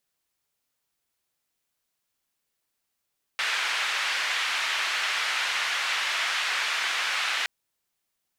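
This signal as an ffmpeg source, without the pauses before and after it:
-f lavfi -i "anoisesrc=c=white:d=4.07:r=44100:seed=1,highpass=f=1500,lowpass=f=2400,volume=-9.9dB"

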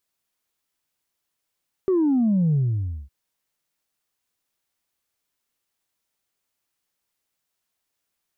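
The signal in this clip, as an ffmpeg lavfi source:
-f lavfi -i "aevalsrc='0.141*clip((1.21-t)/0.55,0,1)*tanh(1*sin(2*PI*390*1.21/log(65/390)*(exp(log(65/390)*t/1.21)-1)))/tanh(1)':d=1.21:s=44100"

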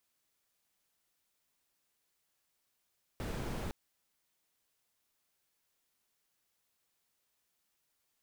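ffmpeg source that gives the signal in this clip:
-f lavfi -i "anoisesrc=c=brown:a=0.0556:d=0.51:r=44100:seed=1"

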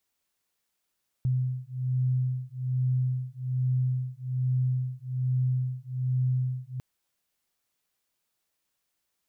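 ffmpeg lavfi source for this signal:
-f lavfi -i "aevalsrc='0.0398*(sin(2*PI*127*t)+sin(2*PI*128.2*t))':d=5.55:s=44100"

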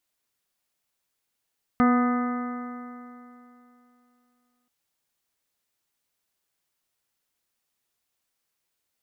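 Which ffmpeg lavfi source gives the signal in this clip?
-f lavfi -i "aevalsrc='0.15*pow(10,-3*t/2.94)*sin(2*PI*244.16*t)+0.0376*pow(10,-3*t/2.94)*sin(2*PI*489.27*t)+0.0473*pow(10,-3*t/2.94)*sin(2*PI*736.27*t)+0.0168*pow(10,-3*t/2.94)*sin(2*PI*986.1*t)+0.075*pow(10,-3*t/2.94)*sin(2*PI*1239.67*t)+0.0168*pow(10,-3*t/2.94)*sin(2*PI*1497.87*t)+0.015*pow(10,-3*t/2.94)*sin(2*PI*1761.56*t)+0.0168*pow(10,-3*t/2.94)*sin(2*PI*2031.58*t)':d=2.88:s=44100"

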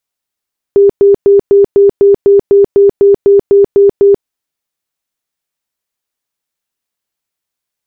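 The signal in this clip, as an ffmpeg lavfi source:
-f lavfi -i "aevalsrc='0.794*sin(2*PI*400*mod(t,0.25))*lt(mod(t,0.25),54/400)':d=3.5:s=44100"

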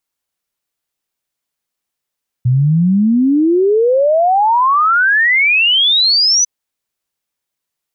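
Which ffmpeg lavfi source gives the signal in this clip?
-f lavfi -i "aevalsrc='0.376*clip(min(t,4-t)/0.01,0,1)*sin(2*PI*120*4/log(6100/120)*(exp(log(6100/120)*t/4)-1))':d=4:s=44100"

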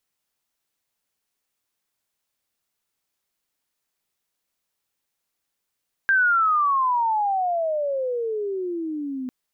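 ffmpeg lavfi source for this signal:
-f lavfi -i "aevalsrc='pow(10,(-15-12*t/3.2)/20)*sin(2*PI*1600*3.2/log(250/1600)*(exp(log(250/1600)*t/3.2)-1))':d=3.2:s=44100"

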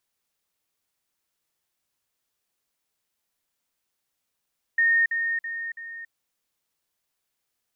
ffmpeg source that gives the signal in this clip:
-f lavfi -i "aevalsrc='pow(10,(-17-6*floor(t/0.33))/20)*sin(2*PI*1840*t)*clip(min(mod(t,0.33),0.28-mod(t,0.33))/0.005,0,1)':d=1.32:s=44100"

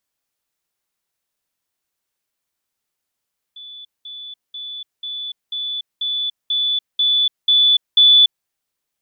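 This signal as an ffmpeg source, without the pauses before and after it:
-f lavfi -i "aevalsrc='pow(10,(-34+3*floor(t/0.49))/20)*sin(2*PI*3470*t)*clip(min(mod(t,0.49),0.29-mod(t,0.49))/0.005,0,1)':d=4.9:s=44100"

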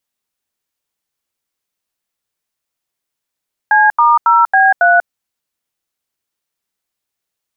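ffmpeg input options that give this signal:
-f lavfi -i "aevalsrc='0.355*clip(min(mod(t,0.275),0.191-mod(t,0.275))/0.002,0,1)*(eq(floor(t/0.275),0)*(sin(2*PI*852*mod(t,0.275))+sin(2*PI*1633*mod(t,0.275)))+eq(floor(t/0.275),1)*(sin(2*PI*941*mod(t,0.275))+sin(2*PI*1209*mod(t,0.275)))+eq(floor(t/0.275),2)*(sin(2*PI*941*mod(t,0.275))+sin(2*PI*1336*mod(t,0.275)))+eq(floor(t/0.275),3)*(sin(2*PI*770*mod(t,0.275))+sin(2*PI*1633*mod(t,0.275)))+eq(floor(t/0.275),4)*(sin(2*PI*697*mod(t,0.275))+sin(2*PI*1477*mod(t,0.275))))':d=1.375:s=44100"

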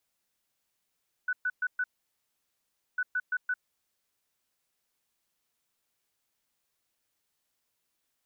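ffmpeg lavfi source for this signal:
-f lavfi -i "aevalsrc='0.0501*sin(2*PI*1490*t)*clip(min(mod(mod(t,1.7),0.17),0.05-mod(mod(t,1.7),0.17))/0.005,0,1)*lt(mod(t,1.7),0.68)':d=3.4:s=44100"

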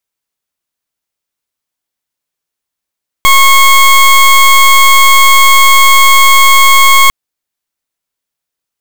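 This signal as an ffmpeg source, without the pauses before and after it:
-f lavfi -i "aevalsrc='0.631*(2*lt(mod(1090*t,1),0.21)-1)':d=3.85:s=44100"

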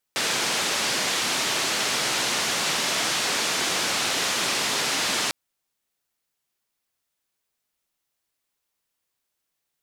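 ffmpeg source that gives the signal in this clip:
-f lavfi -i "anoisesrc=c=white:d=5.15:r=44100:seed=1,highpass=f=160,lowpass=f=5900,volume=-14.6dB"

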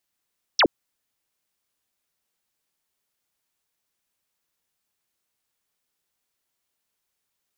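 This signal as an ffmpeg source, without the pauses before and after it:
-f lavfi -i "aevalsrc='0.211*clip(t/0.002,0,1)*clip((0.07-t)/0.002,0,1)*sin(2*PI*6200*0.07/log(240/6200)*(exp(log(240/6200)*t/0.07)-1))':d=0.07:s=44100"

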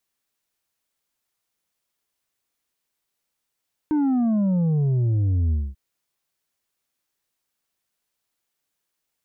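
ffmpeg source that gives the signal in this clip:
-f lavfi -i "aevalsrc='0.119*clip((1.84-t)/0.23,0,1)*tanh(1.78*sin(2*PI*310*1.84/log(65/310)*(exp(log(65/310)*t/1.84)-1)))/tanh(1.78)':d=1.84:s=44100"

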